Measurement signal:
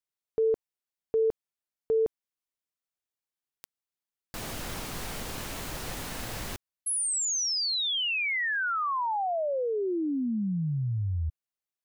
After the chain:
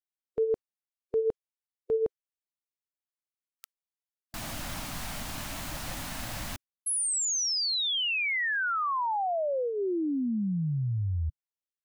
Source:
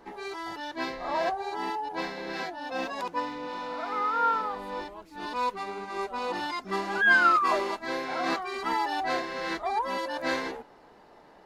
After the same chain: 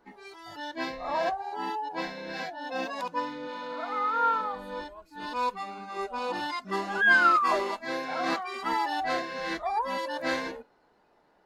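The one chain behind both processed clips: spectral noise reduction 11 dB

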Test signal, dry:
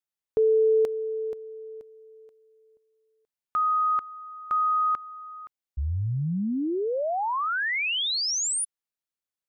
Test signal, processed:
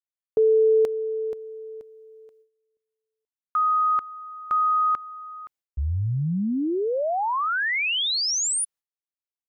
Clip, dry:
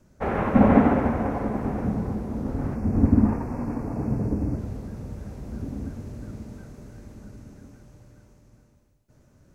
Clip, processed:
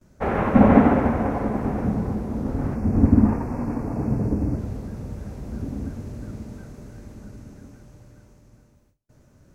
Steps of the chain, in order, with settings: gate with hold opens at -54 dBFS, hold 0.105 s, range -18 dB; gain +2.5 dB

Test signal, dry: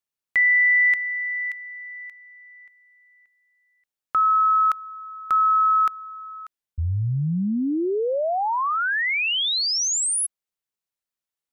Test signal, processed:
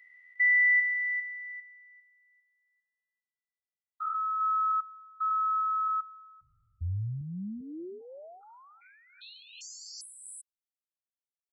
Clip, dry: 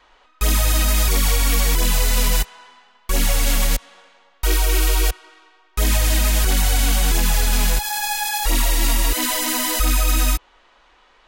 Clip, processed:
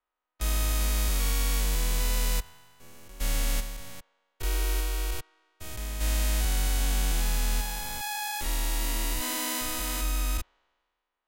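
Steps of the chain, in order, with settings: stepped spectrum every 0.4 s; three-band expander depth 70%; gain -8.5 dB

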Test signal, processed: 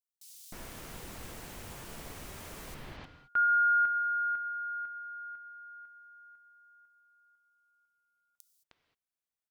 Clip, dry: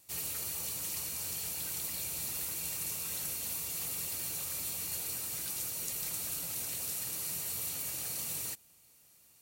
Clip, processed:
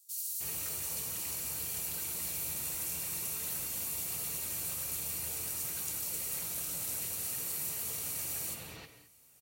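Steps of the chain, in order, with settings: bands offset in time highs, lows 0.31 s, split 4200 Hz; non-linear reverb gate 0.24 s flat, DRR 7.5 dB

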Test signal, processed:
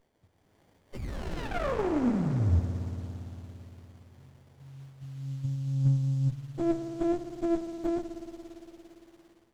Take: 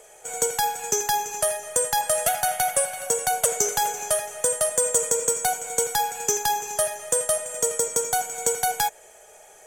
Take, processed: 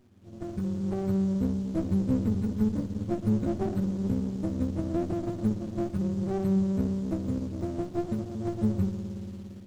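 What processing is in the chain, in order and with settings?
spectrum mirrored in octaves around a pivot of 400 Hz; high shelf 2500 Hz -5.5 dB; compressor 3:1, threshold -24 dBFS; band noise 2700–7500 Hz -62 dBFS; flange 0.94 Hz, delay 7.6 ms, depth 6.8 ms, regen +39%; spring tank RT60 3.7 s, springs 57 ms, chirp 45 ms, DRR 6.5 dB; AGC gain up to 9 dB; high shelf 8500 Hz +10 dB; running maximum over 33 samples; gain -5 dB

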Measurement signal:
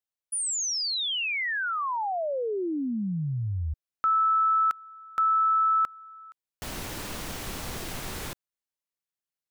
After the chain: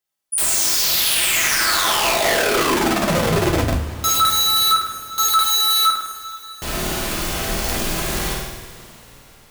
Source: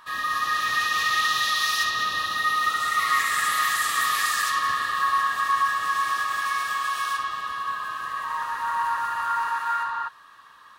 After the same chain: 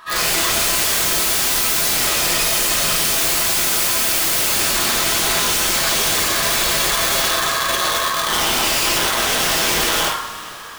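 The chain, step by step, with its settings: flutter echo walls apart 9 m, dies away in 0.99 s; wrapped overs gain 23 dB; two-slope reverb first 0.38 s, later 4.6 s, from -20 dB, DRR -1 dB; gain +6.5 dB

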